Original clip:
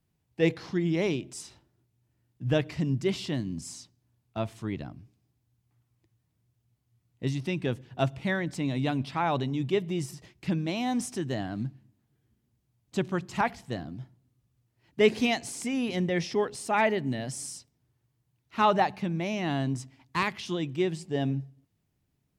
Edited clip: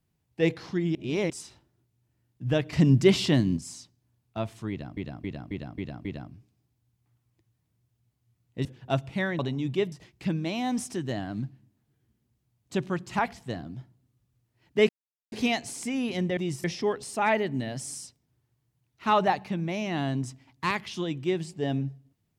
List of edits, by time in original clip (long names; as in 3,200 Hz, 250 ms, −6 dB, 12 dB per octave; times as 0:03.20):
0:00.95–0:01.30: reverse
0:02.73–0:03.57: clip gain +8.5 dB
0:04.70–0:04.97: repeat, 6 plays
0:07.30–0:07.74: remove
0:08.48–0:09.34: remove
0:09.87–0:10.14: move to 0:16.16
0:15.11: splice in silence 0.43 s